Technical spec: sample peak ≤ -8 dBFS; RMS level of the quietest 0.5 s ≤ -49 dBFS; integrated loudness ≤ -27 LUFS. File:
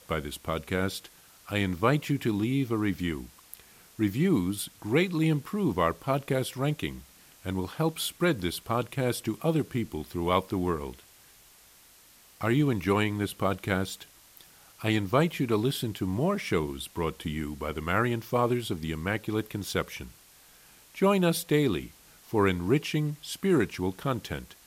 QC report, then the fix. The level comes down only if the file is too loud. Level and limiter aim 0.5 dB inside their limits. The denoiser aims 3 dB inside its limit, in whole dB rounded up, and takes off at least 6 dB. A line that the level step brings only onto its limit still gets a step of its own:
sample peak -9.5 dBFS: pass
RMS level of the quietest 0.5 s -57 dBFS: pass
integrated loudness -29.0 LUFS: pass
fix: none needed

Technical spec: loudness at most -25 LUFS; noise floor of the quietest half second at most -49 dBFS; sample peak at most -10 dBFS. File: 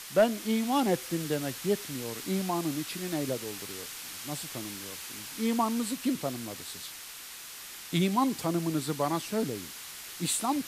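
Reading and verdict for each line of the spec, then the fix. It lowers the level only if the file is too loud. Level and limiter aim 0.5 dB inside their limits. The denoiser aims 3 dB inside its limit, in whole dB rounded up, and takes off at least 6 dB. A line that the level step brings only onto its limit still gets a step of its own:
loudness -31.5 LUFS: pass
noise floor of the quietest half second -44 dBFS: fail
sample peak -14.0 dBFS: pass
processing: noise reduction 8 dB, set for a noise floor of -44 dBFS

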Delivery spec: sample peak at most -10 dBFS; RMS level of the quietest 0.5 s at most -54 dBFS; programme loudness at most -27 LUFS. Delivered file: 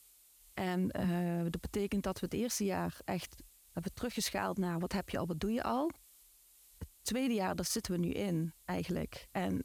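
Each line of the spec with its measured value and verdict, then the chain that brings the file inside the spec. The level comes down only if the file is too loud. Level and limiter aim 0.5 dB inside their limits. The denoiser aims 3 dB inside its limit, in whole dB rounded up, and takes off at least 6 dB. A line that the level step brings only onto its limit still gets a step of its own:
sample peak -21.0 dBFS: pass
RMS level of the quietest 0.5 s -63 dBFS: pass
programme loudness -36.5 LUFS: pass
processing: none needed

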